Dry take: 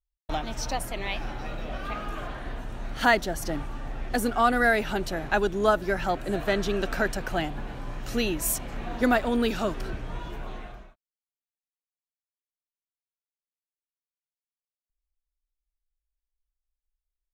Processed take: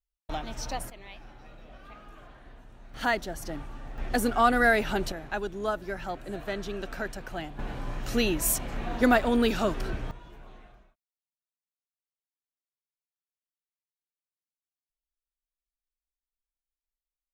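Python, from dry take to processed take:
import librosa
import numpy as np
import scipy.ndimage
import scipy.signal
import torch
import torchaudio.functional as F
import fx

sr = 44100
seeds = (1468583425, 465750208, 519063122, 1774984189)

y = fx.gain(x, sr, db=fx.steps((0.0, -4.0), (0.9, -15.0), (2.94, -6.0), (3.98, 0.0), (5.12, -8.0), (7.59, 1.0), (10.11, -12.0)))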